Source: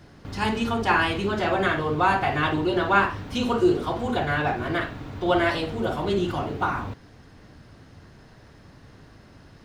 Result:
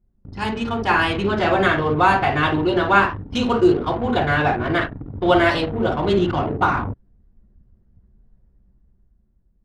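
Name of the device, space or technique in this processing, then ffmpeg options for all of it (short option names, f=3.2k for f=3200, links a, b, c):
voice memo with heavy noise removal: -af "anlmdn=15.8,dynaudnorm=f=160:g=13:m=8dB"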